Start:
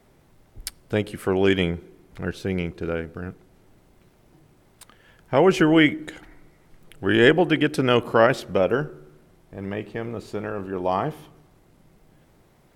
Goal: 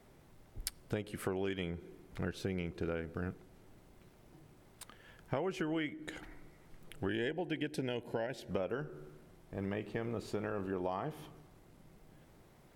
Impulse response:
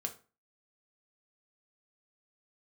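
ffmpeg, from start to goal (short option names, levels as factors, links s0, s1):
-filter_complex "[0:a]acompressor=threshold=0.0355:ratio=12,asettb=1/sr,asplit=3[s0][s1][s2];[s0]atrim=end=7.094[s3];[s1]atrim=start=7.09:end=8.51,asetpts=PTS-STARTPTS,afade=t=in:d=0.004:c=qsin,afade=t=out:st=1.416:d=0.004:c=qsin,asuperstop=centerf=1200:order=4:qfactor=2.2[s4];[s2]atrim=start=8.506[s5];[s3][s4]acrossfade=d=0.004:c1=hsin:c2=qsin[s6];[s6][s5]acrossfade=d=0.004:c1=qsin:c2=hsin,volume=0.631"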